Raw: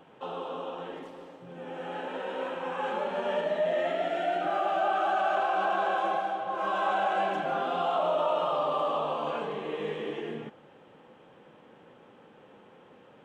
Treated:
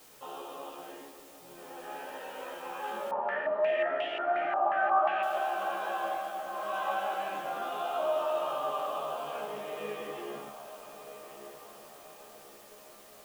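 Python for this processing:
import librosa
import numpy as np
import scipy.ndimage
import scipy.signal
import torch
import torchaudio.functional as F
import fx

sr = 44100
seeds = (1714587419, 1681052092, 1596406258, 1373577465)

y = fx.low_shelf(x, sr, hz=170.0, db=-10.0)
y = fx.comb_fb(y, sr, f0_hz=70.0, decay_s=0.23, harmonics='all', damping=0.0, mix_pct=100)
y = fx.dmg_noise_colour(y, sr, seeds[0], colour='white', level_db=-59.0)
y = fx.comb_fb(y, sr, f0_hz=610.0, decay_s=0.15, harmonics='all', damping=0.0, mix_pct=60)
y = fx.echo_diffused(y, sr, ms=1352, feedback_pct=45, wet_db=-12.0)
y = fx.filter_held_lowpass(y, sr, hz=5.6, low_hz=950.0, high_hz=2900.0, at=(3.11, 5.23))
y = y * 10.0 ** (9.0 / 20.0)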